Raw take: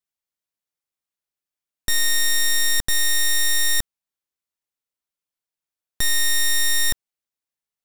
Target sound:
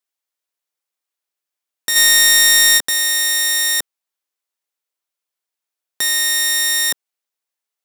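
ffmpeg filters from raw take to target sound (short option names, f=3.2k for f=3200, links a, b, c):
-filter_complex "[0:a]highpass=370,asplit=3[a][b][c];[a]afade=t=out:st=1.95:d=0.02[d];[b]acontrast=82,afade=t=in:st=1.95:d=0.02,afade=t=out:st=2.77:d=0.02[e];[c]afade=t=in:st=2.77:d=0.02[f];[d][e][f]amix=inputs=3:normalize=0,volume=5dB"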